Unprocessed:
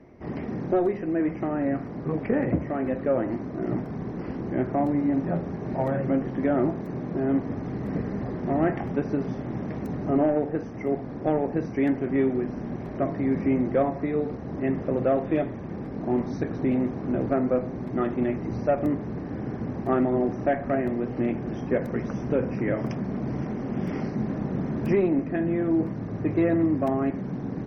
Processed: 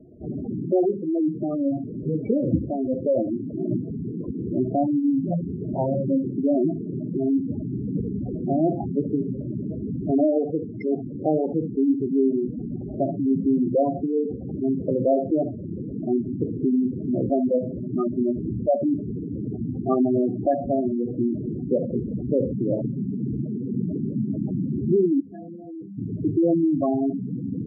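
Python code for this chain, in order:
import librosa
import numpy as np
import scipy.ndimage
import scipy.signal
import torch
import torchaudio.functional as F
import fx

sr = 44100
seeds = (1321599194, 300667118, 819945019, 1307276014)

y = x + 10.0 ** (-13.0 / 20.0) * np.pad(x, (int(71 * sr / 1000.0), 0))[:len(x)]
y = np.repeat(scipy.signal.resample_poly(y, 1, 6), 6)[:len(y)]
y = fx.comb_fb(y, sr, f0_hz=99.0, decay_s=0.89, harmonics='all', damping=0.0, mix_pct=90, at=(25.2, 25.98))
y = fx.spec_gate(y, sr, threshold_db=-10, keep='strong')
y = fx.lowpass(y, sr, hz=1500.0, slope=12, at=(22.45, 22.86))
y = F.gain(torch.from_numpy(y), 3.0).numpy()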